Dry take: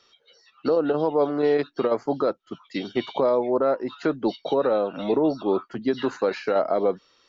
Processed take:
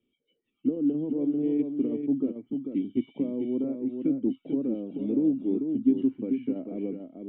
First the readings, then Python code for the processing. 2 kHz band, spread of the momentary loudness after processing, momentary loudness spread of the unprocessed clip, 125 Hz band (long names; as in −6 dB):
below −20 dB, 7 LU, 6 LU, −3.0 dB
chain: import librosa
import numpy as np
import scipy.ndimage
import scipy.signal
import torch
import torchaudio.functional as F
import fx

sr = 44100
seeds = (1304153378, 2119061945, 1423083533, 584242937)

y = fx.formant_cascade(x, sr, vowel='i')
y = fx.tilt_shelf(y, sr, db=6.5, hz=760.0)
y = y + 10.0 ** (-6.0 / 20.0) * np.pad(y, (int(442 * sr / 1000.0), 0))[:len(y)]